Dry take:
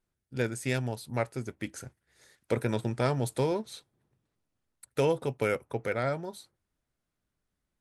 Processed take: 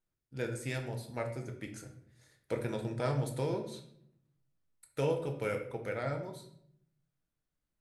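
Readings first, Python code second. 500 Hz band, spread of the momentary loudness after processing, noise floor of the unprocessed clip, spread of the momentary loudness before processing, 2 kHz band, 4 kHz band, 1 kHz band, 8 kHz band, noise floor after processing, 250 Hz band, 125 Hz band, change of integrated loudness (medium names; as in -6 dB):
-5.0 dB, 12 LU, -85 dBFS, 14 LU, -6.5 dB, -6.0 dB, -6.0 dB, -6.5 dB, under -85 dBFS, -5.5 dB, -4.0 dB, -5.0 dB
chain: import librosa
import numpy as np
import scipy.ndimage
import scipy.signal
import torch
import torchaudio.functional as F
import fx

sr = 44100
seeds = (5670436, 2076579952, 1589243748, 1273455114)

y = fx.room_shoebox(x, sr, seeds[0], volume_m3=130.0, walls='mixed', distance_m=0.59)
y = y * librosa.db_to_amplitude(-7.5)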